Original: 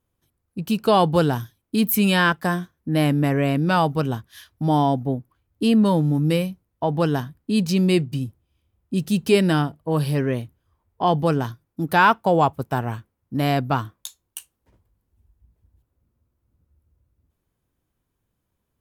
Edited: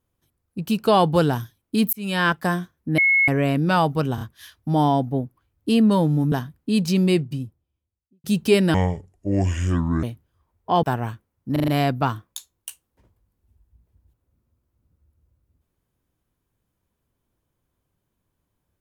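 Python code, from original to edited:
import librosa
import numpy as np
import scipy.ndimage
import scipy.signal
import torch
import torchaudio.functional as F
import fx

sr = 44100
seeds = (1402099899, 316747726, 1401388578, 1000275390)

y = fx.studio_fade_out(x, sr, start_s=7.76, length_s=1.29)
y = fx.edit(y, sr, fx.fade_in_span(start_s=1.93, length_s=0.39),
    fx.bleep(start_s=2.98, length_s=0.3, hz=2180.0, db=-14.0),
    fx.stutter(start_s=4.15, slice_s=0.03, count=3),
    fx.cut(start_s=6.26, length_s=0.87),
    fx.speed_span(start_s=9.55, length_s=0.8, speed=0.62),
    fx.cut(start_s=11.15, length_s=1.53),
    fx.stutter(start_s=13.37, slice_s=0.04, count=5), tone=tone)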